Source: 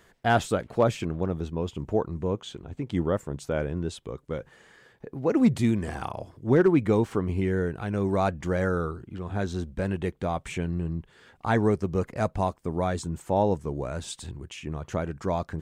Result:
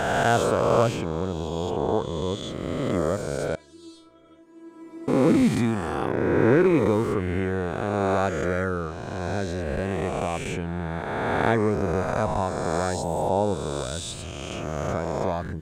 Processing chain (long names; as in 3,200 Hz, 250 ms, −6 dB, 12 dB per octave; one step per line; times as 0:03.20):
peak hold with a rise ahead of every peak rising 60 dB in 2.59 s
0:03.55–0:05.08: tuned comb filter 330 Hz, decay 0.36 s, harmonics all, mix 100%
level −2 dB